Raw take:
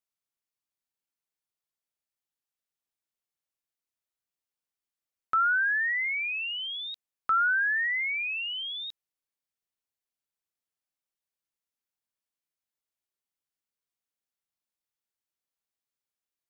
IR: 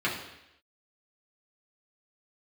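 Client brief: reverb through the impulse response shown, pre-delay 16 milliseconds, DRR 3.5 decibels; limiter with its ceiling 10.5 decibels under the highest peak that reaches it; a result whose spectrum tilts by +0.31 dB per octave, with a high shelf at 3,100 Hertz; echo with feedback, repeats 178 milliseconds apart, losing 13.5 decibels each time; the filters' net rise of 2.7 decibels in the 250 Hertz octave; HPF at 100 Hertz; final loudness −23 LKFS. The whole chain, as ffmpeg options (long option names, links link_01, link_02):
-filter_complex "[0:a]highpass=100,equalizer=frequency=250:width_type=o:gain=3.5,highshelf=frequency=3100:gain=9,alimiter=level_in=4dB:limit=-24dB:level=0:latency=1,volume=-4dB,aecho=1:1:178|356:0.211|0.0444,asplit=2[link_01][link_02];[1:a]atrim=start_sample=2205,adelay=16[link_03];[link_02][link_03]afir=irnorm=-1:irlink=0,volume=-14.5dB[link_04];[link_01][link_04]amix=inputs=2:normalize=0,volume=4.5dB"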